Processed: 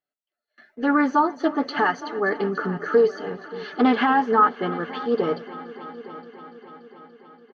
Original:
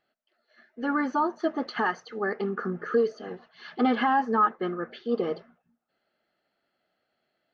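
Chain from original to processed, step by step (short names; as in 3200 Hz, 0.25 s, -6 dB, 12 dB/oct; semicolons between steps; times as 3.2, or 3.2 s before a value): gate with hold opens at -52 dBFS; comb 6.9 ms, depth 40%; on a send: multi-head echo 0.288 s, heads all three, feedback 58%, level -20.5 dB; on the sum: Doppler distortion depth 0.11 ms; gain +5 dB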